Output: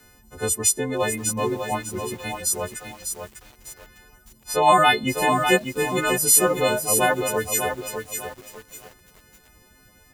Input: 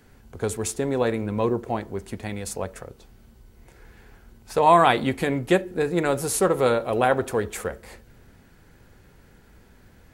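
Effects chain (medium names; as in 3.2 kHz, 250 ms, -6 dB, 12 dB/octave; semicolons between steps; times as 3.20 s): partials quantised in pitch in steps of 3 st; reverb removal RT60 0.79 s; bit-crushed delay 599 ms, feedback 35%, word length 7-bit, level -6 dB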